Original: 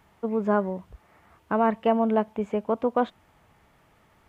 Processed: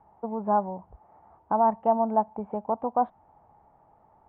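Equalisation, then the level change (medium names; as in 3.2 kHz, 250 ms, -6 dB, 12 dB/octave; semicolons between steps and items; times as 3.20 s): resonant low-pass 830 Hz, resonance Q 4.9; dynamic bell 430 Hz, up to -7 dB, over -30 dBFS, Q 1.2; -4.5 dB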